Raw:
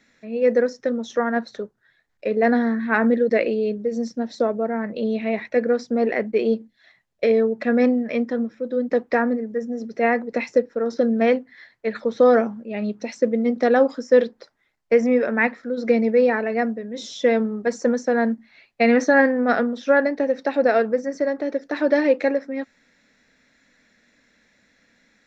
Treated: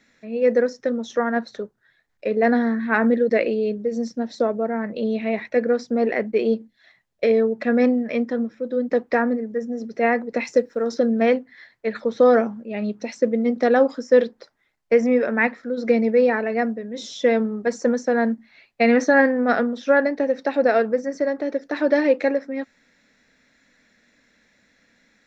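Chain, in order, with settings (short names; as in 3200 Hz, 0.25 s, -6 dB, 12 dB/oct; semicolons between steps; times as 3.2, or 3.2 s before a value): 10.45–10.99 high shelf 5000 Hz +11 dB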